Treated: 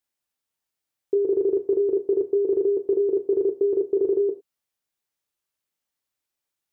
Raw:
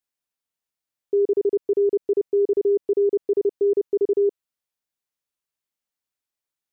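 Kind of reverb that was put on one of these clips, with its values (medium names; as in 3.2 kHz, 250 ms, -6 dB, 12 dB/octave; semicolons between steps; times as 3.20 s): gated-style reverb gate 130 ms falling, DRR 6.5 dB; trim +2 dB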